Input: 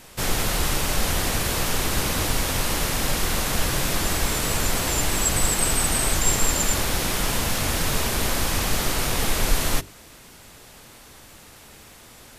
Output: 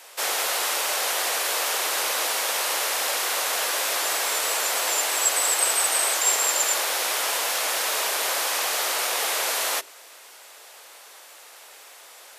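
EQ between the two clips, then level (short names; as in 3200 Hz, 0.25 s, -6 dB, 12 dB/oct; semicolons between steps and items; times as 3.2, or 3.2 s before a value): HPF 500 Hz 24 dB/oct; +1.5 dB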